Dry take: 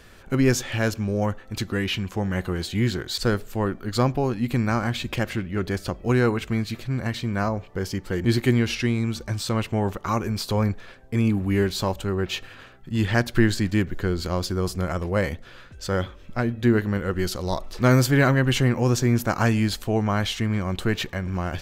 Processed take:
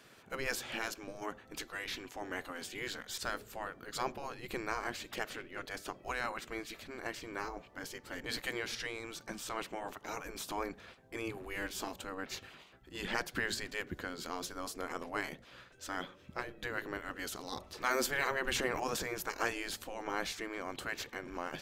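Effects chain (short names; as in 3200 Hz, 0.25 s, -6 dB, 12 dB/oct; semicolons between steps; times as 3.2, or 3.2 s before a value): spectral gate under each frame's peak -10 dB weak; 18.42–19.15 transient shaper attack +5 dB, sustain +9 dB; gain -7 dB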